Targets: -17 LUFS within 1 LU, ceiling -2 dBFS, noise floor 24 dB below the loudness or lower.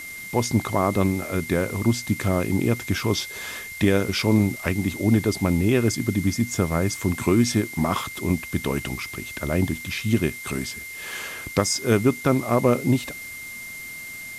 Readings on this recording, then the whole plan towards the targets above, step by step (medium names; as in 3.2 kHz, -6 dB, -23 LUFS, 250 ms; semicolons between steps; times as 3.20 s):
steady tone 2.1 kHz; tone level -35 dBFS; noise floor -37 dBFS; noise floor target -48 dBFS; loudness -23.5 LUFS; peak level -3.5 dBFS; loudness target -17.0 LUFS
-> band-stop 2.1 kHz, Q 30; noise reduction 11 dB, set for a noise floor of -37 dBFS; trim +6.5 dB; peak limiter -2 dBFS